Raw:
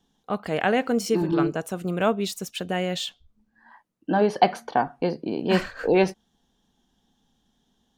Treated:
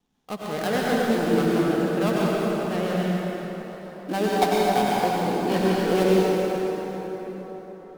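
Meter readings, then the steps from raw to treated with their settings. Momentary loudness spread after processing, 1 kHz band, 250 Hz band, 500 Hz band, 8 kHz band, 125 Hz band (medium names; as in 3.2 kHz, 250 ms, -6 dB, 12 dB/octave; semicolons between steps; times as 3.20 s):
15 LU, +1.5 dB, +2.5 dB, +2.5 dB, +1.0 dB, +3.5 dB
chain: dead-time distortion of 0.19 ms; vibrato 7.1 Hz 43 cents; plate-style reverb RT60 4.8 s, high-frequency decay 0.6×, pre-delay 80 ms, DRR -6 dB; trim -5 dB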